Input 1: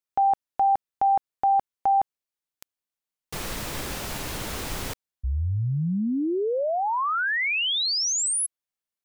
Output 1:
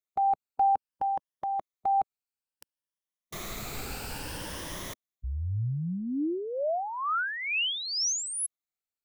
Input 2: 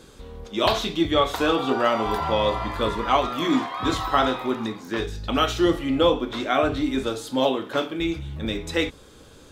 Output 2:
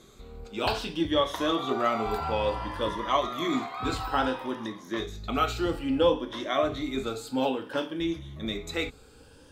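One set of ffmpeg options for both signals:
-af "afftfilt=real='re*pow(10,9/40*sin(2*PI*(1.2*log(max(b,1)*sr/1024/100)/log(2)-(0.59)*(pts-256)/sr)))':imag='im*pow(10,9/40*sin(2*PI*(1.2*log(max(b,1)*sr/1024/100)/log(2)-(0.59)*(pts-256)/sr)))':win_size=1024:overlap=0.75,volume=0.473"

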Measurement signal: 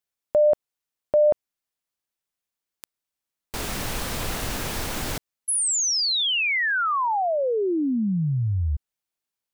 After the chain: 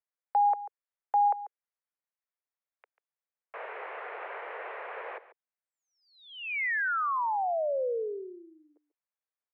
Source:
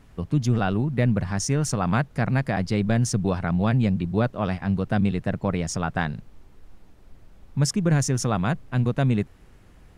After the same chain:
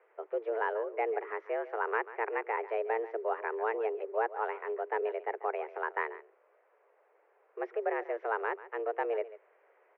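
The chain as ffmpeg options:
-filter_complex "[0:a]asplit=2[s0][s1];[s1]aecho=0:1:141:0.158[s2];[s0][s2]amix=inputs=2:normalize=0,highpass=f=220:t=q:w=0.5412,highpass=f=220:t=q:w=1.307,lowpass=f=2100:t=q:w=0.5176,lowpass=f=2100:t=q:w=0.7071,lowpass=f=2100:t=q:w=1.932,afreqshift=220,volume=0.501"

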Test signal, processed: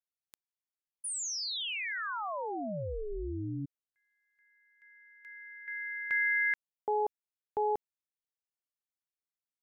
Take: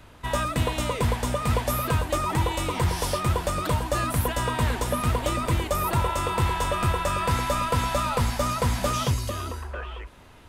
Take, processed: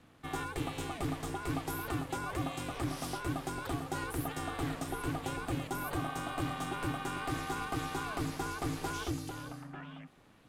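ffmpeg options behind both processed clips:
-af "aeval=exprs='val(0)*sin(2*PI*210*n/s)':c=same,volume=0.355"

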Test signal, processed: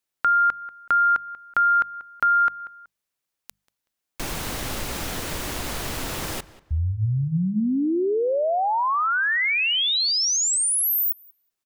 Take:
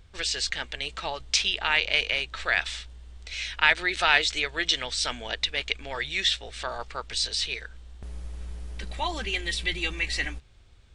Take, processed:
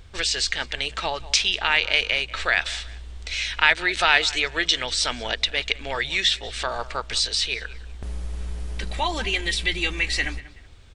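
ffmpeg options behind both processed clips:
-filter_complex "[0:a]asplit=2[s0][s1];[s1]adelay=188,lowpass=f=3700:p=1,volume=0.106,asplit=2[s2][s3];[s3]adelay=188,lowpass=f=3700:p=1,volume=0.28[s4];[s0][s2][s4]amix=inputs=3:normalize=0,asplit=2[s5][s6];[s6]acompressor=threshold=0.02:ratio=6,volume=1.12[s7];[s5][s7]amix=inputs=2:normalize=0,bandreject=f=50:t=h:w=6,bandreject=f=100:t=h:w=6,bandreject=f=150:t=h:w=6,bandreject=f=200:t=h:w=6,volume=1.19"

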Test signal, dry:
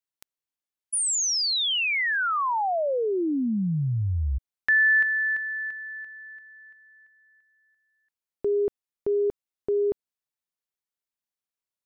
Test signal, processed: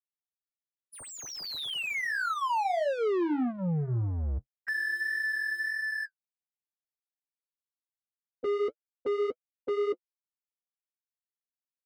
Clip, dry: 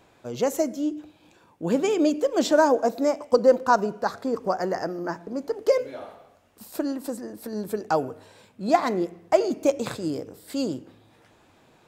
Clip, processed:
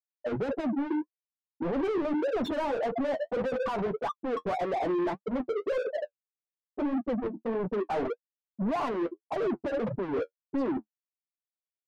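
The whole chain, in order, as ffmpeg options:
-filter_complex "[0:a]highpass=90,afftfilt=real='re*gte(hypot(re,im),0.112)':imag='im*gte(hypot(re,im),0.112)':win_size=1024:overlap=0.75,lowpass=3900,tiltshelf=f=1300:g=3,acompressor=threshold=0.0398:ratio=10:attack=0.43:release=44:knee=1:detection=peak,asplit=2[s0][s1];[s1]highpass=f=720:p=1,volume=28.2,asoftclip=type=tanh:threshold=0.0668[s2];[s0][s2]amix=inputs=2:normalize=0,lowpass=f=1300:p=1,volume=0.501,flanger=delay=6.8:depth=4.9:regen=-35:speed=1.7:shape=sinusoidal,volume=1.58"

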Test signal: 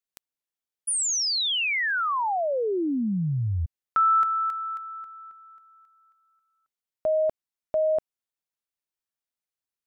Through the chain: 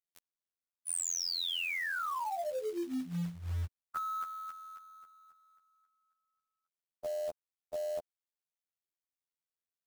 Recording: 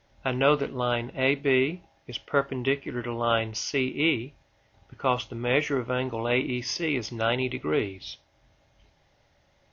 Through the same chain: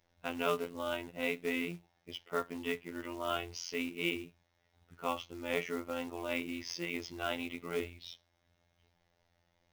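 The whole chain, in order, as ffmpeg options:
-af "afftfilt=real='hypot(re,im)*cos(PI*b)':imag='0':win_size=2048:overlap=0.75,acrusher=bits=4:mode=log:mix=0:aa=0.000001,volume=0.447"

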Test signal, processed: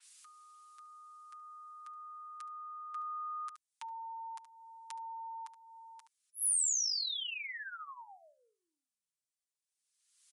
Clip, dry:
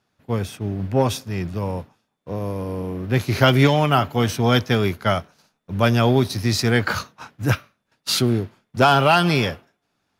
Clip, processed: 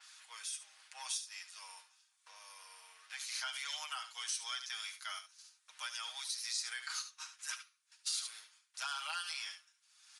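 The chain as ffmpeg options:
-filter_complex "[0:a]aecho=1:1:72:0.211,acrossover=split=1600[s0][s1];[s1]alimiter=limit=0.0841:level=0:latency=1:release=85[s2];[s0][s2]amix=inputs=2:normalize=0,acompressor=mode=upward:threshold=0.0501:ratio=2.5,aresample=22050,aresample=44100,highpass=f=990:w=0.5412,highpass=f=990:w=1.3066,aderivative,aecho=1:1:6.4:0.65,acompressor=threshold=0.00316:ratio=1.5,adynamicequalizer=threshold=0.00224:dfrequency=3800:dqfactor=0.7:tfrequency=3800:tqfactor=0.7:attack=5:release=100:ratio=0.375:range=2.5:mode=boostabove:tftype=highshelf,volume=0.891"

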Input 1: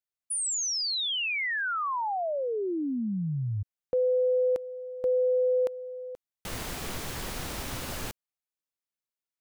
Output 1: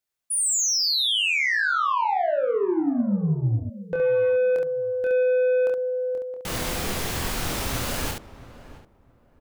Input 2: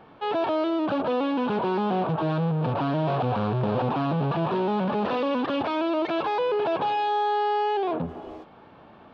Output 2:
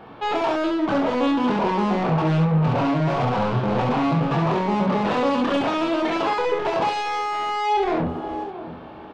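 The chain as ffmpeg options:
-filter_complex "[0:a]asplit=2[s0][s1];[s1]adelay=669,lowpass=f=1200:p=1,volume=0.158,asplit=2[s2][s3];[s3]adelay=669,lowpass=f=1200:p=1,volume=0.23[s4];[s2][s4]amix=inputs=2:normalize=0[s5];[s0][s5]amix=inputs=2:normalize=0,asoftclip=type=tanh:threshold=0.0473,asplit=2[s6][s7];[s7]aecho=0:1:25|69:0.631|0.668[s8];[s6][s8]amix=inputs=2:normalize=0,volume=2"

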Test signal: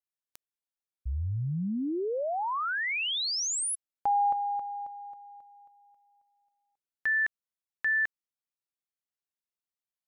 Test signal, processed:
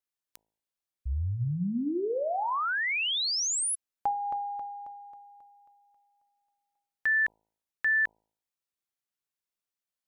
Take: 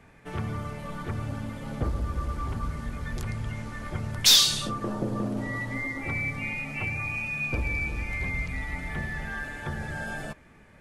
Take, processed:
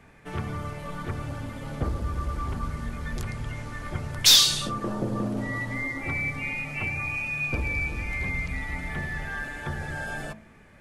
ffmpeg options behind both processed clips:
-af "bandreject=f=54.14:t=h:w=4,bandreject=f=108.28:t=h:w=4,bandreject=f=162.42:t=h:w=4,bandreject=f=216.56:t=h:w=4,bandreject=f=270.7:t=h:w=4,bandreject=f=324.84:t=h:w=4,bandreject=f=378.98:t=h:w=4,bandreject=f=433.12:t=h:w=4,bandreject=f=487.26:t=h:w=4,bandreject=f=541.4:t=h:w=4,bandreject=f=595.54:t=h:w=4,bandreject=f=649.68:t=h:w=4,bandreject=f=703.82:t=h:w=4,bandreject=f=757.96:t=h:w=4,bandreject=f=812.1:t=h:w=4,bandreject=f=866.24:t=h:w=4,bandreject=f=920.38:t=h:w=4,bandreject=f=974.52:t=h:w=4,volume=1.19"

